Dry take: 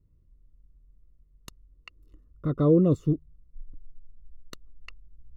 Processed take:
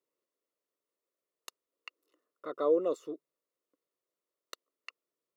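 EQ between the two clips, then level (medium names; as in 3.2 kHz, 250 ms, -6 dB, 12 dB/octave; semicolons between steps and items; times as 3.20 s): high-pass 470 Hz 24 dB/octave; 0.0 dB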